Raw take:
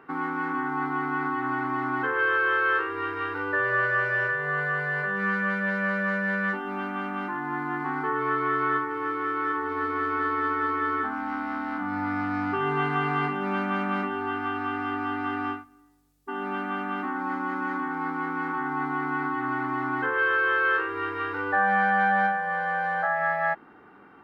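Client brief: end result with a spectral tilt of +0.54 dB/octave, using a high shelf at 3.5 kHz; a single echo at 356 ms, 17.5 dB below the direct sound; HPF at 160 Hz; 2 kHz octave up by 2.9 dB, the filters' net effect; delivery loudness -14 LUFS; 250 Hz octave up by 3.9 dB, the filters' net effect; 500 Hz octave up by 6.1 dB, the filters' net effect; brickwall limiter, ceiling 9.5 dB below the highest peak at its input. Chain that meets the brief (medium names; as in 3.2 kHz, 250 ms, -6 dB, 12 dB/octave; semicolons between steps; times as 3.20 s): high-pass 160 Hz; peaking EQ 250 Hz +3.5 dB; peaking EQ 500 Hz +6.5 dB; peaking EQ 2 kHz +4.5 dB; treble shelf 3.5 kHz -4.5 dB; peak limiter -19 dBFS; delay 356 ms -17.5 dB; trim +13 dB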